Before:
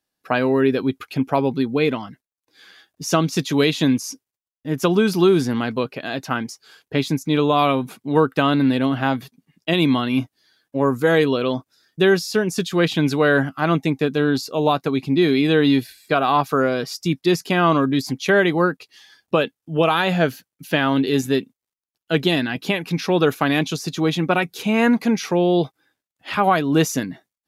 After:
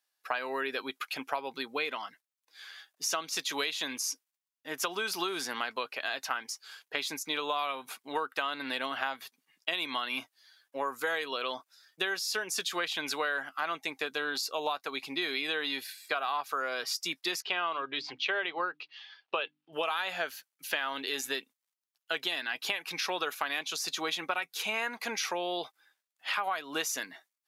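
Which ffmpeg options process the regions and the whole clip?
-filter_complex "[0:a]asettb=1/sr,asplit=3[a][b][c];[a]atrim=end=17.424[d];[b]atrim=start=17.42:end=19.73,asetpts=PTS-STARTPTS,afade=t=in:d=0.004:c=qsin,afade=t=out:st=2.306:d=0.004:c=qsin,highpass=110,equalizer=f=120:t=q:w=4:g=7,equalizer=f=240:t=q:w=4:g=-9,equalizer=f=400:t=q:w=4:g=4,equalizer=f=1.8k:t=q:w=4:g=-3,equalizer=f=2.8k:t=q:w=4:g=4,lowpass=f=4k:w=0.5412,lowpass=f=4k:w=1.3066,bandreject=f=50:t=h:w=6,bandreject=f=100:t=h:w=6,bandreject=f=150:t=h:w=6,bandreject=f=200:t=h:w=6,bandreject=f=250:t=h:w=6,bandreject=f=300:t=h:w=6[e];[c]atrim=start=19.726[f];[d][e]acrossfade=d=0.004:c1=hsin:c2=qsin[g];[g][f]acrossfade=d=0.004:c1=qsin:c2=hsin,highpass=930,acompressor=threshold=-29dB:ratio=6"

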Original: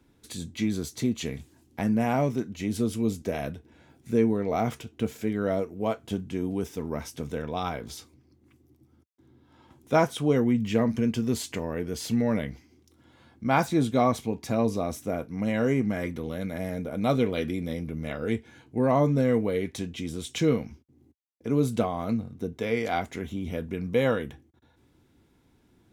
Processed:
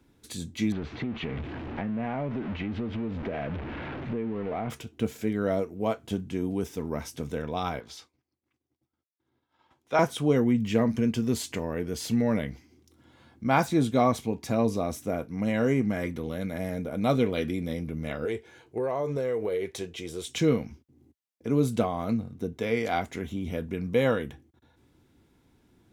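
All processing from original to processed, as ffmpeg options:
-filter_complex "[0:a]asettb=1/sr,asplit=3[a][b][c];[a]atrim=end=0.724[d];[b]atrim=start=0.72:end=4.7,asetpts=PTS-STARTPTS,afade=t=in:d=0.004:c=qsin,afade=t=out:st=3.976:d=0.004:c=qsin,aeval=exprs='val(0)+0.5*0.0299*sgn(val(0))':c=same,lowpass=f=2.8k:w=0.5412,lowpass=f=2.8k:w=1.3066,acompressor=threshold=-28dB:ratio=5:attack=3.2:release=140:knee=1:detection=peak[e];[c]atrim=start=4.696[f];[d][e]acrossfade=d=0.004:c1=hsin:c2=qsin[g];[g][f]acrossfade=d=0.004:c1=qsin:c2=hsin,asettb=1/sr,asplit=3[h][i][j];[h]atrim=end=7.804[k];[i]atrim=start=7.8:end=9.99,asetpts=PTS-STARTPTS,afade=t=in:d=0.004:c=qsin,afade=t=out:st=2.186:d=0.004:c=qsin,agate=range=-33dB:threshold=-52dB:ratio=3:release=100:detection=peak,acrossover=split=520 6200:gain=0.224 1 0.251[l][m][n];[l][m][n]amix=inputs=3:normalize=0[o];[j]atrim=start=9.986[p];[k][o]acrossfade=d=0.004:c1=hsin:c2=qsin[q];[q][p]acrossfade=d=0.004:c1=qsin:c2=hsin,asettb=1/sr,asplit=3[r][s][t];[r]atrim=end=18.254[u];[s]atrim=start=18.25:end=20.28,asetpts=PTS-STARTPTS,afade=t=in:d=0.004:c=qsin,afade=t=out:st=2.026:d=0.004:c=qsin,lowshelf=f=320:t=q:w=3:g=-6,acompressor=threshold=-25dB:ratio=6:attack=3.2:release=140:knee=1:detection=peak[v];[t]atrim=start=20.276[w];[u][v]acrossfade=d=0.004:c1=hsin:c2=qsin[x];[x][w]acrossfade=d=0.004:c1=qsin:c2=hsin"

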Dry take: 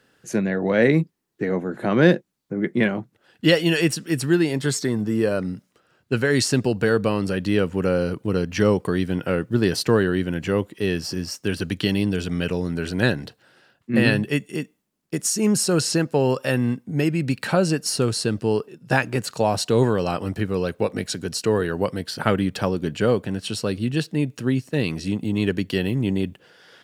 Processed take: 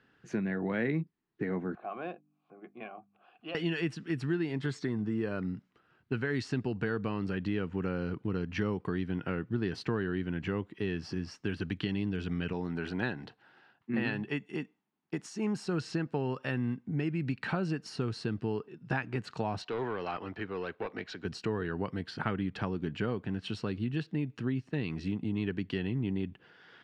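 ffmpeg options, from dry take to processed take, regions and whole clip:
-filter_complex "[0:a]asettb=1/sr,asplit=3[a][b][c];[a]atrim=end=1.754[d];[b]atrim=start=1.75:end=3.55,asetpts=PTS-STARTPTS,afade=t=in:d=0.004:c=qsin,afade=t=out:st=1.796:d=0.004:c=qsin,bandreject=f=50:t=h:w=6,bandreject=f=100:t=h:w=6,bandreject=f=150:t=h:w=6,bandreject=f=200:t=h:w=6,bandreject=f=250:t=h:w=6,bandreject=f=300:t=h:w=6,acompressor=mode=upward:threshold=-27dB:ratio=2.5:attack=3.2:release=140:knee=2.83:detection=peak,asplit=3[e][f][g];[e]bandpass=f=730:t=q:w=8,volume=0dB[h];[f]bandpass=f=1.09k:t=q:w=8,volume=-6dB[i];[g]bandpass=f=2.44k:t=q:w=8,volume=-9dB[j];[h][i][j]amix=inputs=3:normalize=0[k];[c]atrim=start=3.546[l];[d][k]acrossfade=d=0.004:c1=hsin:c2=qsin[m];[m][l]acrossfade=d=0.004:c1=qsin:c2=hsin,asettb=1/sr,asplit=3[n][o][p];[n]atrim=end=12.534[q];[o]atrim=start=12.53:end=15.65,asetpts=PTS-STARTPTS,afade=t=in:d=0.004:c=qsin,afade=t=out:st=3.116:d=0.004:c=qsin,highpass=f=190:p=1,equalizer=f=830:w=3.1:g=6.5[r];[p]atrim=start=15.646[s];[q][r]acrossfade=d=0.004:c1=hsin:c2=qsin[t];[t][s]acrossfade=d=0.004:c1=qsin:c2=hsin,asettb=1/sr,asplit=3[u][v][w];[u]atrim=end=19.624[x];[v]atrim=start=19.62:end=21.25,asetpts=PTS-STARTPTS,afade=t=in:d=0.004:c=qsin,afade=t=out:st=1.626:d=0.004:c=qsin,acrossover=split=350 6000:gain=0.2 1 0.0708[y][z][aa];[y][z][aa]amix=inputs=3:normalize=0,aeval=exprs='(tanh(8.91*val(0)+0.05)-tanh(0.05))/8.91':c=same[ab];[w]atrim=start=21.246[ac];[x][ab]acrossfade=d=0.004:c1=hsin:c2=qsin[ad];[ad][ac]acrossfade=d=0.004:c1=qsin:c2=hsin,equalizer=f=550:w=2.9:g=-9.5,acompressor=threshold=-27dB:ratio=2.5,lowpass=2.8k,volume=-4dB"

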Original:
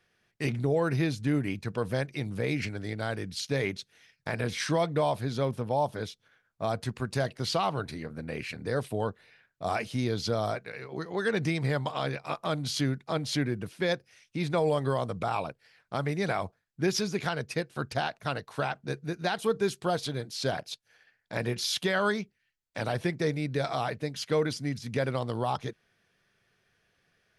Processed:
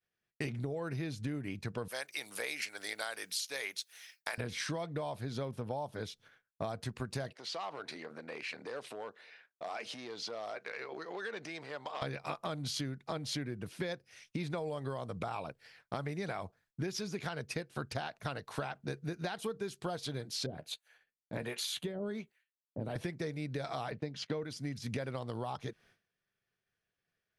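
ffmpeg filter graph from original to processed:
-filter_complex "[0:a]asettb=1/sr,asplit=3[a][b][c];[a]atrim=end=1.884[d];[b]atrim=start=1.88:end=4.38,asetpts=PTS-STARTPTS,afade=t=in:d=0.004:c=qsin,afade=t=out:st=2.496:d=0.004:c=qsin,highpass=780,aemphasis=mode=production:type=50fm[e];[c]atrim=start=4.376[f];[d][e]acrossfade=d=0.004:c1=hsin:c2=qsin[g];[g][f]acrossfade=d=0.004:c1=qsin:c2=hsin,asettb=1/sr,asplit=3[h][i][j];[h]atrim=end=7.334[k];[i]atrim=start=7.33:end=12.02,asetpts=PTS-STARTPTS,afade=t=in:d=0.004:c=qsin,afade=t=out:st=4.686:d=0.004:c=qsin,acompressor=threshold=-39dB:ratio=4:attack=3.2:release=140:knee=1:detection=peak,asoftclip=type=hard:threshold=-35dB,highpass=420,lowpass=6.7k[l];[j]atrim=start=12.016[m];[k][l]acrossfade=d=0.004:c1=hsin:c2=qsin[n];[n][m]acrossfade=d=0.004:c1=qsin:c2=hsin,asettb=1/sr,asplit=3[o][p][q];[o]atrim=end=20.464[r];[p]atrim=start=20.46:end=22.96,asetpts=PTS-STARTPTS,afade=t=in:d=0.004:c=qsin,afade=t=out:st=2.496:d=0.004:c=qsin,equalizer=f=5.3k:t=o:w=0.31:g=-14,acrossover=split=500[s][t];[s]aeval=exprs='val(0)*(1-1/2+1/2*cos(2*PI*1.3*n/s))':c=same[u];[t]aeval=exprs='val(0)*(1-1/2-1/2*cos(2*PI*1.3*n/s))':c=same[v];[u][v]amix=inputs=2:normalize=0,asplit=2[w][x];[x]adelay=13,volume=-11.5dB[y];[w][y]amix=inputs=2:normalize=0,atrim=end_sample=110250[z];[q]atrim=start=22.956[aa];[r][z]acrossfade=d=0.004:c1=hsin:c2=qsin[ab];[ab][aa]acrossfade=d=0.004:c1=qsin:c2=hsin,asettb=1/sr,asplit=3[ac][ad][ae];[ac]atrim=end=23.914[af];[ad]atrim=start=23.91:end=24.44,asetpts=PTS-STARTPTS,afade=t=in:d=0.004:c=qsin,afade=t=out:st=0.526:d=0.004:c=qsin,lowshelf=f=410:g=6,agate=range=-21dB:threshold=-45dB:ratio=16:release=100:detection=peak,highpass=130,lowpass=5.1k[ag];[ae]atrim=start=24.436[ah];[af][ag]acrossfade=d=0.004:c1=hsin:c2=qsin[ai];[ai][ah]acrossfade=d=0.004:c1=qsin:c2=hsin,agate=range=-33dB:threshold=-58dB:ratio=3:detection=peak,acompressor=threshold=-38dB:ratio=12,volume=3.5dB"

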